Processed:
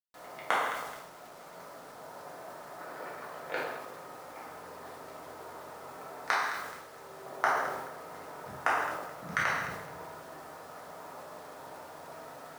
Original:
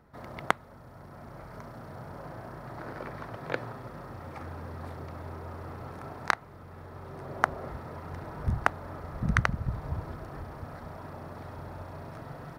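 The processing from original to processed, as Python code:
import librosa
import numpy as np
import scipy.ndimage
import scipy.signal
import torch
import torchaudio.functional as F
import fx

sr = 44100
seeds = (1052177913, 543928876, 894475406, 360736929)

y = scipy.signal.sosfilt(scipy.signal.butter(2, 400.0, 'highpass', fs=sr, output='sos'), x)
y = fx.echo_alternate(y, sr, ms=107, hz=1200.0, feedback_pct=63, wet_db=-11)
y = fx.rev_gated(y, sr, seeds[0], gate_ms=260, shape='falling', drr_db=-5.0)
y = fx.quant_dither(y, sr, seeds[1], bits=8, dither='none')
y = fx.sustainer(y, sr, db_per_s=42.0)
y = y * 10.0 ** (-7.0 / 20.0)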